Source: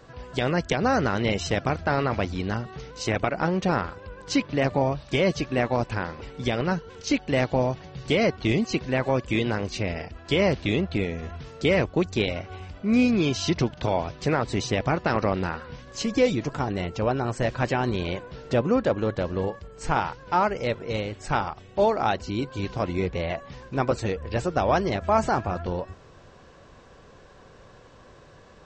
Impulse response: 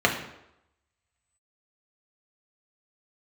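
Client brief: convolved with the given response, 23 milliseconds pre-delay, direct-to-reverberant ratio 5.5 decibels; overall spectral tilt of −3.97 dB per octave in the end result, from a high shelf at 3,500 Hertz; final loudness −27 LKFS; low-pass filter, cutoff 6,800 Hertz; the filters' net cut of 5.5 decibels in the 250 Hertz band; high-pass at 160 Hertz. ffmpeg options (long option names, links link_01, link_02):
-filter_complex "[0:a]highpass=160,lowpass=6800,equalizer=frequency=250:width_type=o:gain=-6,highshelf=frequency=3500:gain=-3,asplit=2[link_01][link_02];[1:a]atrim=start_sample=2205,adelay=23[link_03];[link_02][link_03]afir=irnorm=-1:irlink=0,volume=-22.5dB[link_04];[link_01][link_04]amix=inputs=2:normalize=0,volume=0.5dB"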